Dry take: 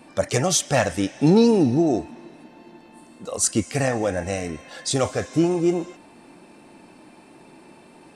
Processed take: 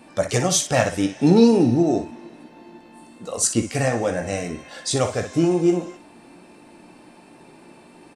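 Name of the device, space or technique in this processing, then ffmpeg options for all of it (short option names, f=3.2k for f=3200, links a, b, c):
slapback doubling: -filter_complex "[0:a]asplit=3[a][b][c];[b]adelay=17,volume=-9dB[d];[c]adelay=61,volume=-10dB[e];[a][d][e]amix=inputs=3:normalize=0"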